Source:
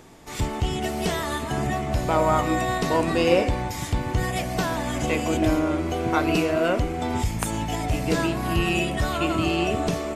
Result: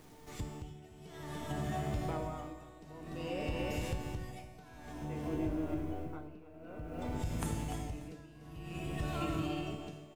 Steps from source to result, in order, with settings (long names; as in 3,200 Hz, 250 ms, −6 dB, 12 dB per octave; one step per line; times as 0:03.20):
0:04.92–0:06.99: head-to-tape spacing loss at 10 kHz 32 dB
tuned comb filter 150 Hz, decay 1.5 s, mix 90%
bit reduction 11 bits
low-shelf EQ 430 Hz +7.5 dB
repeating echo 293 ms, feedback 49%, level −7 dB
downward compressor, threshold −36 dBFS, peak gain reduction 8 dB
tuned comb filter 53 Hz, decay 1.9 s
amplitude tremolo 0.54 Hz, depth 89%
level +11.5 dB